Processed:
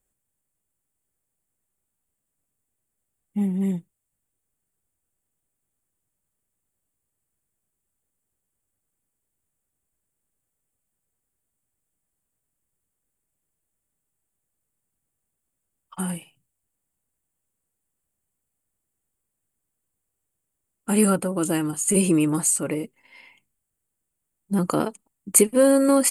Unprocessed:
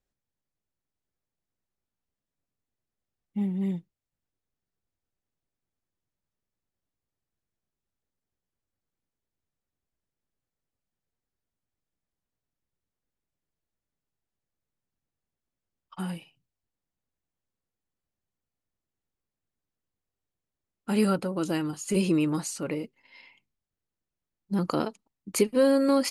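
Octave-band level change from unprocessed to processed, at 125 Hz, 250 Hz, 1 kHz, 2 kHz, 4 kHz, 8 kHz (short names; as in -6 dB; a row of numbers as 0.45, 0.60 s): +4.5, +4.5, +4.5, +4.0, +0.5, +15.0 dB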